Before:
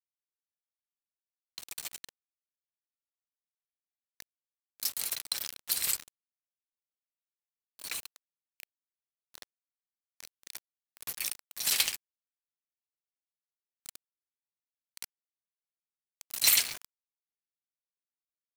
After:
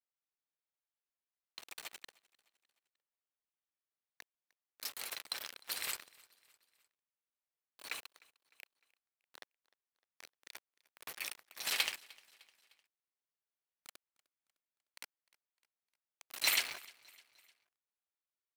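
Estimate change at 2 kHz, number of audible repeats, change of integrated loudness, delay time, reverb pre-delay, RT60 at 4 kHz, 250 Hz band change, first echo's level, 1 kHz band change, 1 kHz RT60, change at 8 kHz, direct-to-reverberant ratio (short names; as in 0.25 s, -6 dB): -1.5 dB, 2, -8.0 dB, 0.304 s, none, none, -5.0 dB, -24.0 dB, 0.0 dB, none, -11.0 dB, none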